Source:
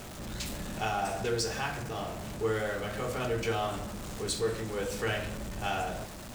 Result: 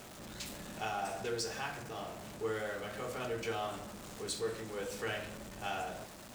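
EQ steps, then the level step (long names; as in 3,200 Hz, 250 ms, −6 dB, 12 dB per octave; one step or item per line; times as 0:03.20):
low-shelf EQ 110 Hz −11.5 dB
−5.5 dB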